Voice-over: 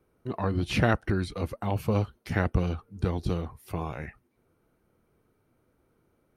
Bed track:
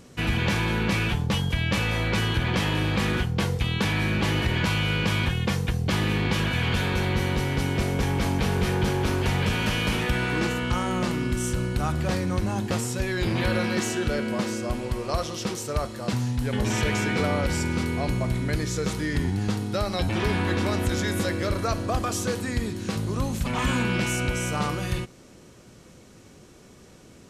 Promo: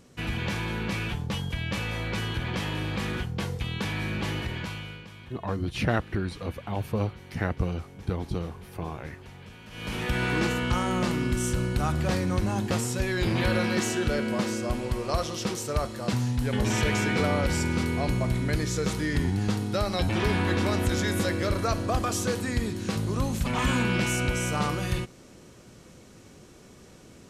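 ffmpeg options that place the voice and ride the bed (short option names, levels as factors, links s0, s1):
-filter_complex "[0:a]adelay=5050,volume=0.794[s0];[1:a]volume=5.96,afade=t=out:st=4.29:d=0.78:silence=0.158489,afade=t=in:st=9.7:d=0.56:silence=0.0841395[s1];[s0][s1]amix=inputs=2:normalize=0"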